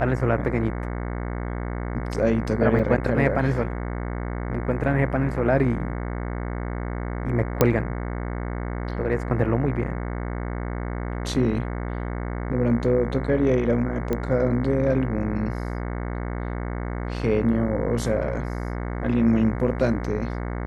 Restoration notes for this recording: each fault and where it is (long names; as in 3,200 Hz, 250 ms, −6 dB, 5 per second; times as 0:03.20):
mains buzz 60 Hz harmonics 37 −29 dBFS
0:02.79: drop-out 4.4 ms
0:07.61: click −3 dBFS
0:14.13: click −13 dBFS